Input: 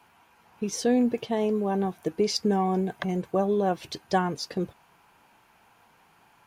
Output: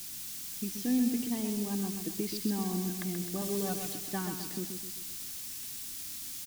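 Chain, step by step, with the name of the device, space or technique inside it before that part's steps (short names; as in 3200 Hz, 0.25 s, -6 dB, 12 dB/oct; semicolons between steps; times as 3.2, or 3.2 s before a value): wax cylinder (BPF 270–2400 Hz; wow and flutter; white noise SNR 12 dB); EQ curve 290 Hz 0 dB, 490 Hz -21 dB, 5600 Hz +1 dB; 3.41–3.93 comb 6.9 ms, depth 92%; feedback echo 0.13 s, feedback 49%, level -6.5 dB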